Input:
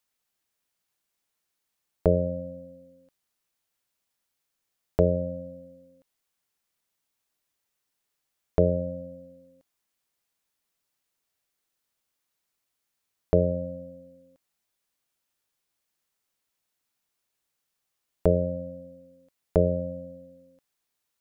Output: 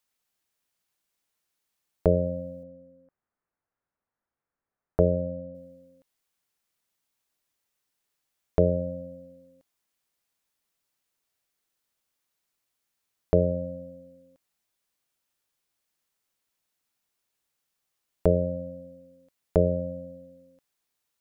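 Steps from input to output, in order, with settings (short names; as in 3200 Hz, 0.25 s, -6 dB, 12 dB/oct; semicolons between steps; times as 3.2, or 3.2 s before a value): 2.63–5.55 LPF 1700 Hz 24 dB/oct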